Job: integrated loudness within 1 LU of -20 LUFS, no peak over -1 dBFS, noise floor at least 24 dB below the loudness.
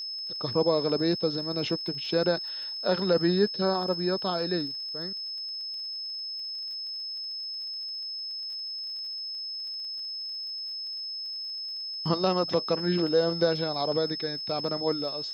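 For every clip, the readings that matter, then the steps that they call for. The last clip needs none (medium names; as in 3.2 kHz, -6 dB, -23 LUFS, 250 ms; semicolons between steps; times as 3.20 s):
tick rate 36 per s; steady tone 5.2 kHz; tone level -33 dBFS; loudness -29.0 LUFS; peak level -10.0 dBFS; loudness target -20.0 LUFS
-> de-click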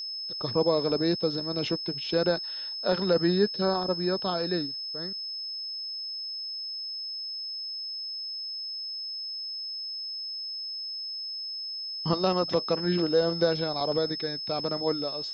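tick rate 0.065 per s; steady tone 5.2 kHz; tone level -33 dBFS
-> band-stop 5.2 kHz, Q 30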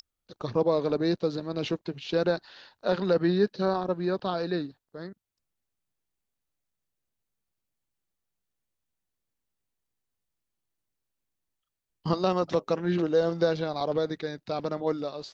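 steady tone not found; loudness -28.5 LUFS; peak level -10.5 dBFS; loudness target -20.0 LUFS
-> trim +8.5 dB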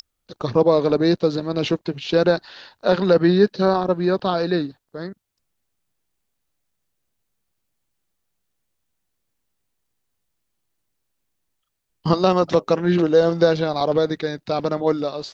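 loudness -20.0 LUFS; peak level -2.0 dBFS; noise floor -76 dBFS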